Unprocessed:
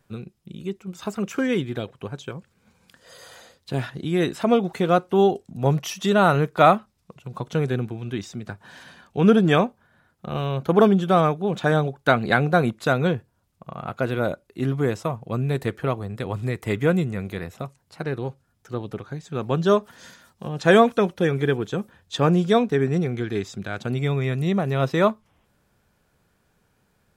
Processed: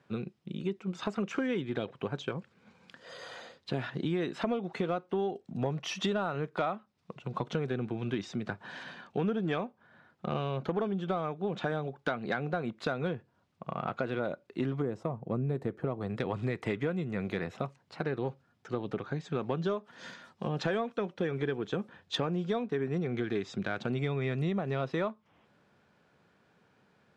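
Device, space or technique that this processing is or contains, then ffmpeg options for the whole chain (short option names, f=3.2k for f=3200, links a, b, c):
AM radio: -filter_complex "[0:a]asettb=1/sr,asplit=3[a][b][c];[a]atrim=end=14.824[d];[b]atrim=start=14.82:end=16.01,asetpts=PTS-STARTPTS,afade=t=in:d=0.004:c=qsin,afade=t=out:st=1.186:d=0.004:c=qsin,equalizer=f=3.1k:w=0.4:g=-14[e];[c]atrim=start=16.006[f];[d][e]acrossfade=d=0.004:c1=hsin:c2=qsin[g];[g][f]acrossfade=d=0.004:c1=qsin:c2=hsin,highpass=150,lowpass=4k,acompressor=threshold=-29dB:ratio=10,asoftclip=type=tanh:threshold=-18.5dB,volume=1.5dB"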